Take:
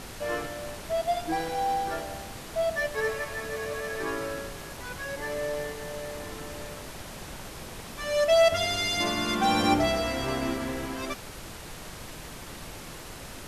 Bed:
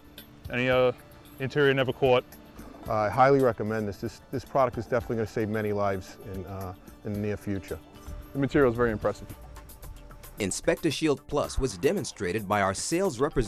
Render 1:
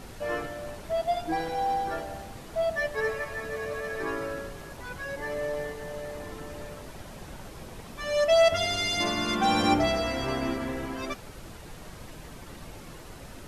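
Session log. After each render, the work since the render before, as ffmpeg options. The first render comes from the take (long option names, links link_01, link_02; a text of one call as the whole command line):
ffmpeg -i in.wav -af "afftdn=noise_reduction=7:noise_floor=-42" out.wav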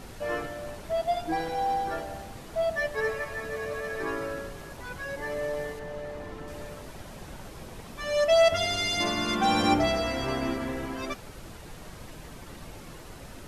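ffmpeg -i in.wav -filter_complex "[0:a]asettb=1/sr,asplit=3[link_01][link_02][link_03];[link_01]atrim=end=5.794[link_04];[link_02]atrim=start=5.79:end=6.48,asetpts=PTS-STARTPTS,afade=type=in:duration=0.004:curve=qsin,afade=type=out:start_time=0.686:duration=0.004:curve=qsin,highshelf=frequency=5400:gain=-11.5[link_05];[link_03]atrim=start=6.476[link_06];[link_04][link_05]acrossfade=duration=0.004:curve1=hsin:curve2=qsin[link_07];[link_07][link_06]acrossfade=duration=0.004:curve1=qsin:curve2=hsin" out.wav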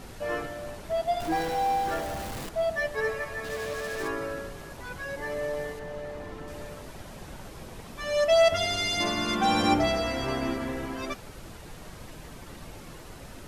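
ffmpeg -i in.wav -filter_complex "[0:a]asettb=1/sr,asplit=3[link_01][link_02][link_03];[link_01]atrim=end=1.204[link_04];[link_02]atrim=start=1.2:end=2.49,asetpts=PTS-STARTPTS,afade=type=in:duration=0.004:curve=qsin,afade=type=out:start_time=1.286:duration=0.004:curve=qsin,aeval=exprs='val(0)+0.5*0.02*sgn(val(0))':channel_layout=same[link_05];[link_03]atrim=start=2.486[link_06];[link_04][link_05]acrossfade=duration=0.004:curve1=hsin:curve2=qsin[link_07];[link_07][link_06]acrossfade=duration=0.004:curve1=qsin:curve2=hsin,asplit=3[link_08][link_09][link_10];[link_08]afade=type=out:start_time=3.43:duration=0.02[link_11];[link_09]acrusher=bits=5:mix=0:aa=0.5,afade=type=in:start_time=3.43:duration=0.02,afade=type=out:start_time=4.07:duration=0.02[link_12];[link_10]afade=type=in:start_time=4.07:duration=0.02[link_13];[link_11][link_12][link_13]amix=inputs=3:normalize=0" out.wav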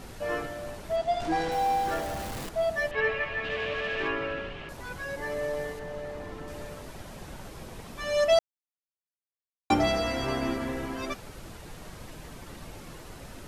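ffmpeg -i in.wav -filter_complex "[0:a]asettb=1/sr,asplit=3[link_01][link_02][link_03];[link_01]atrim=end=0.964[link_04];[link_02]atrim=start=0.96:end=1.52,asetpts=PTS-STARTPTS,afade=type=in:duration=0.004:curve=qsin,afade=type=out:start_time=0.556:duration=0.004:curve=qsin,lowpass=7500[link_05];[link_03]atrim=start=1.516[link_06];[link_04][link_05]acrossfade=duration=0.004:curve1=hsin:curve2=qsin[link_07];[link_07][link_06]acrossfade=duration=0.004:curve1=qsin:curve2=hsin,asettb=1/sr,asplit=3[link_08][link_09][link_10];[link_08]atrim=end=2.914[link_11];[link_09]atrim=start=2.91:end=4.69,asetpts=PTS-STARTPTS,afade=type=in:duration=0.004:curve=qsin,afade=type=out:start_time=1.776:duration=0.004:curve=qsin,lowpass=frequency=2800:width_type=q:width=3.9[link_12];[link_10]atrim=start=4.686[link_13];[link_11][link_12]acrossfade=duration=0.004:curve1=hsin:curve2=qsin[link_14];[link_14][link_13]acrossfade=duration=0.004:curve1=qsin:curve2=hsin,asplit=3[link_15][link_16][link_17];[link_15]atrim=end=8.39,asetpts=PTS-STARTPTS,afade=type=out:start_time=8.386:duration=0.004:curve=hsin[link_18];[link_16]atrim=start=8.39:end=9.7,asetpts=PTS-STARTPTS,volume=0[link_19];[link_17]atrim=start=9.7,asetpts=PTS-STARTPTS,afade=type=in:duration=0.004:curve=hsin[link_20];[link_18][link_19][link_20]concat=n=3:v=0:a=1" out.wav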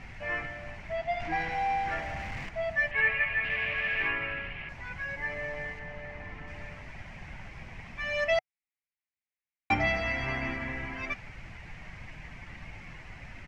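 ffmpeg -i in.wav -af "firequalizer=gain_entry='entry(120,0);entry(310,-10);entry(450,-13);entry(740,-3);entry(1300,-5);entry(2100,10);entry(3600,-10);entry(5600,-9);entry(11000,-29)':delay=0.05:min_phase=1" out.wav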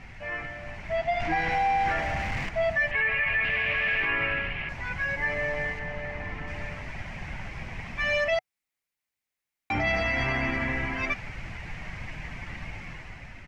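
ffmpeg -i in.wav -af "alimiter=level_in=1dB:limit=-24dB:level=0:latency=1:release=36,volume=-1dB,dynaudnorm=framelen=330:gausssize=5:maxgain=7dB" out.wav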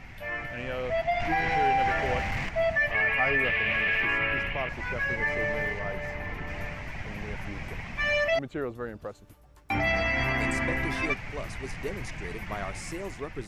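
ffmpeg -i in.wav -i bed.wav -filter_complex "[1:a]volume=-11dB[link_01];[0:a][link_01]amix=inputs=2:normalize=0" out.wav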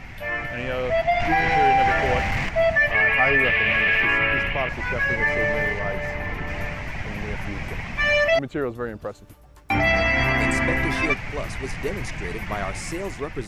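ffmpeg -i in.wav -af "volume=6.5dB" out.wav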